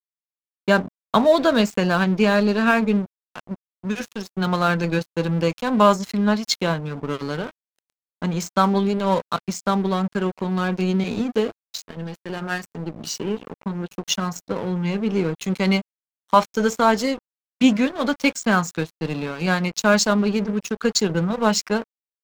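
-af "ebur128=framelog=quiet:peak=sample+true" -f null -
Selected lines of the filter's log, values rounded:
Integrated loudness:
  I:         -21.8 LUFS
  Threshold: -32.1 LUFS
Loudness range:
  LRA:         6.2 LU
  Threshold: -42.5 LUFS
  LRA low:   -26.4 LUFS
  LRA high:  -20.1 LUFS
Sample peak:
  Peak:       -2.1 dBFS
True peak:
  Peak:       -2.1 dBFS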